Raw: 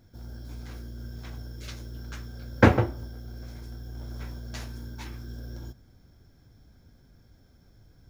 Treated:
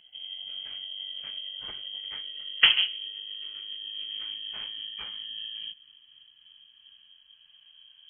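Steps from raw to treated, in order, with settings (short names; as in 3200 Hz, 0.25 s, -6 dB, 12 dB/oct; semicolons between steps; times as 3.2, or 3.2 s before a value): gliding pitch shift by -5 st ending unshifted; inverted band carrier 3200 Hz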